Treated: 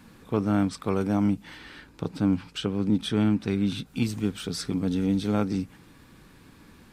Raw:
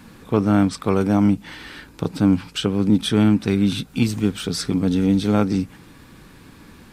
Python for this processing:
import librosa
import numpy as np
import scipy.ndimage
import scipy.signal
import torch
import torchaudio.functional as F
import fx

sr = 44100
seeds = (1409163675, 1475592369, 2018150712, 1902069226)

y = fx.high_shelf(x, sr, hz=8700.0, db=-7.5, at=(1.58, 3.86))
y = y * librosa.db_to_amplitude(-7.0)